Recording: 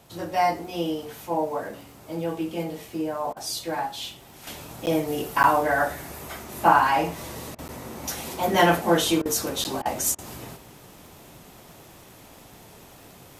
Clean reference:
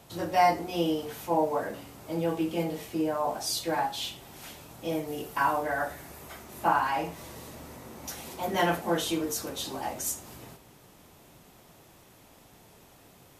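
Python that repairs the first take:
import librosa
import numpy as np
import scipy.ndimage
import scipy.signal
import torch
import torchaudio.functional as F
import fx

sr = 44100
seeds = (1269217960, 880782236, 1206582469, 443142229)

y = fx.fix_declick_ar(x, sr, threshold=6.5)
y = fx.fix_interpolate(y, sr, at_s=(4.86, 5.43, 7.68, 9.64), length_ms=9.7)
y = fx.fix_interpolate(y, sr, at_s=(3.33, 7.55, 9.22, 9.82, 10.15), length_ms=34.0)
y = fx.gain(y, sr, db=fx.steps((0.0, 0.0), (4.47, -7.5)))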